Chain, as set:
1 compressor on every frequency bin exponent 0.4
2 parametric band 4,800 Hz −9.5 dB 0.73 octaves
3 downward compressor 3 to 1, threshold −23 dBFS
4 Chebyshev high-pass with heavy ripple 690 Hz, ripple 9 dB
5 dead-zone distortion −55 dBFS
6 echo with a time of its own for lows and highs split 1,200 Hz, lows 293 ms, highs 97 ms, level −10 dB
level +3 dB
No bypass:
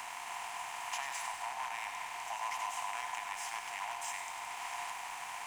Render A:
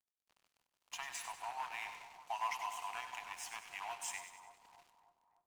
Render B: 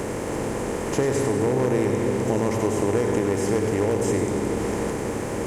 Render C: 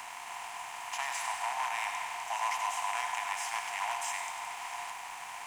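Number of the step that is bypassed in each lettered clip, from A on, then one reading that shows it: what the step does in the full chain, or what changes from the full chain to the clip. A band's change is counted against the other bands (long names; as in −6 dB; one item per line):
1, change in crest factor +2.5 dB
4, 500 Hz band +24.5 dB
3, change in momentary loudness spread +4 LU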